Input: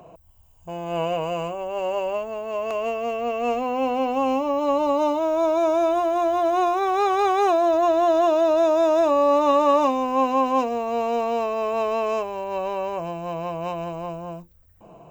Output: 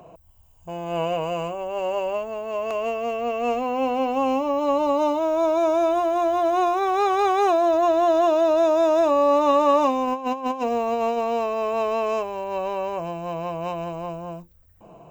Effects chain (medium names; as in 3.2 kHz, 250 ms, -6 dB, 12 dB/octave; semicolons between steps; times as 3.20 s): 10.07–11.18 s: compressor with a negative ratio -24 dBFS, ratio -0.5